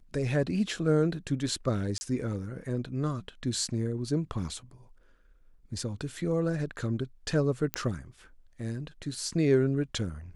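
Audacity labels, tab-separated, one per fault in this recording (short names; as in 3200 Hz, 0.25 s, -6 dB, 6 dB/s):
1.980000	2.010000	gap 30 ms
7.740000	7.740000	pop -12 dBFS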